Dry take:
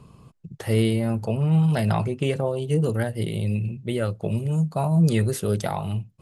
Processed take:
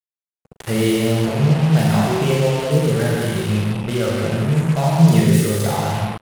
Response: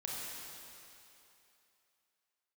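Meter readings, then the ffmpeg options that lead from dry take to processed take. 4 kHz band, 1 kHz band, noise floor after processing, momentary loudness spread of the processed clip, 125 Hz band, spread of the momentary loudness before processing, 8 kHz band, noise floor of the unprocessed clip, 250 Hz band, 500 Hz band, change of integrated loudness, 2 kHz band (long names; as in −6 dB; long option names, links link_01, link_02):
+10.0 dB, +8.0 dB, below −85 dBFS, 7 LU, +5.5 dB, 7 LU, +10.0 dB, −53 dBFS, +6.5 dB, +6.5 dB, +6.5 dB, +9.0 dB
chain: -filter_complex "[0:a]aecho=1:1:13|42:0.251|0.531[link_01];[1:a]atrim=start_sample=2205,afade=type=out:start_time=0.43:duration=0.01,atrim=end_sample=19404[link_02];[link_01][link_02]afir=irnorm=-1:irlink=0,acrusher=bits=4:mix=0:aa=0.5,volume=5dB"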